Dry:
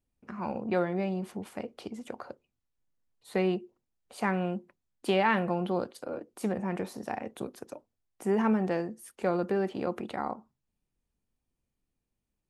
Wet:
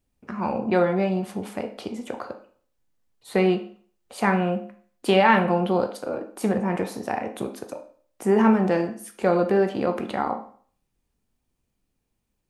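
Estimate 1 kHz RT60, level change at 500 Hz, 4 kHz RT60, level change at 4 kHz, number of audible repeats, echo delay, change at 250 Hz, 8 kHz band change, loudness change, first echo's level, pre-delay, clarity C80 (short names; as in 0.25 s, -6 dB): 0.50 s, +8.5 dB, 0.45 s, +8.0 dB, none, none, +7.5 dB, +7.5 dB, +8.0 dB, none, 14 ms, 15.0 dB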